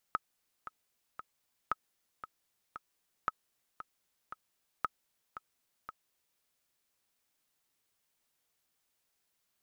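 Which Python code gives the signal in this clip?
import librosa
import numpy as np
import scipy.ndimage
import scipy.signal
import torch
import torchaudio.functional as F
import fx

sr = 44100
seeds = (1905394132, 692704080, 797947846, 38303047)

y = fx.click_track(sr, bpm=115, beats=3, bars=4, hz=1280.0, accent_db=12.5, level_db=-17.0)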